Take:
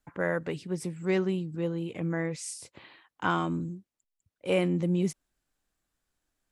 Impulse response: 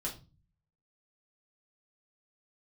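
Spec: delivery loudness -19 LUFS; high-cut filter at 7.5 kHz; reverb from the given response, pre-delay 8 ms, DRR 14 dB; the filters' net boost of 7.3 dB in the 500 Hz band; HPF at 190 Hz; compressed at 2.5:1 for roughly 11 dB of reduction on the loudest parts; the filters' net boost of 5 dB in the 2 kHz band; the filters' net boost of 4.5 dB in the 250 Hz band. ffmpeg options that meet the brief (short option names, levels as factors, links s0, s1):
-filter_complex "[0:a]highpass=190,lowpass=7500,equalizer=f=250:t=o:g=8,equalizer=f=500:t=o:g=6.5,equalizer=f=2000:t=o:g=6,acompressor=threshold=0.0224:ratio=2.5,asplit=2[s0][s1];[1:a]atrim=start_sample=2205,adelay=8[s2];[s1][s2]afir=irnorm=-1:irlink=0,volume=0.178[s3];[s0][s3]amix=inputs=2:normalize=0,volume=5.96"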